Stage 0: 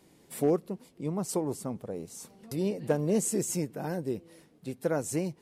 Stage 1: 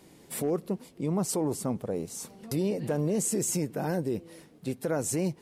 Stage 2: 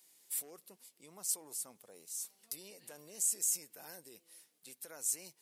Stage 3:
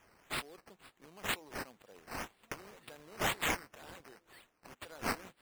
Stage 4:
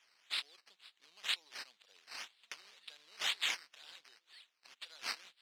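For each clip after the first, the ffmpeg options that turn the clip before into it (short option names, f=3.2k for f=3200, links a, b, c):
-af "alimiter=level_in=2dB:limit=-24dB:level=0:latency=1:release=34,volume=-2dB,volume=5.5dB"
-af "aderivative,volume=-2dB"
-af "acrusher=samples=10:mix=1:aa=0.000001:lfo=1:lforange=6:lforate=2"
-af "bandpass=f=3.9k:t=q:w=2.3:csg=0,volume=7.5dB"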